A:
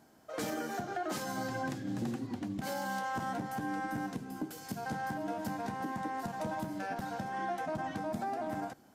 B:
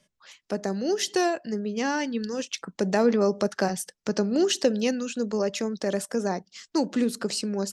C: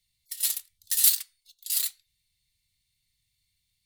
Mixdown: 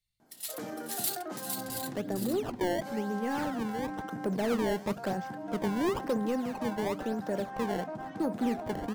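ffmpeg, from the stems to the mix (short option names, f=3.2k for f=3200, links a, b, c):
-filter_complex "[0:a]highpass=110,adelay=200,volume=-2dB[a];[1:a]lowpass=3.7k,acrusher=samples=20:mix=1:aa=0.000001:lfo=1:lforange=32:lforate=0.99,asoftclip=type=tanh:threshold=-20dB,adelay=1450,volume=-3dB[b];[2:a]volume=-4.5dB,asplit=2[c][d];[d]volume=-4.5dB,aecho=0:1:457:1[e];[a][b][c][e]amix=inputs=4:normalize=0,highshelf=f=2.1k:g=-8.5"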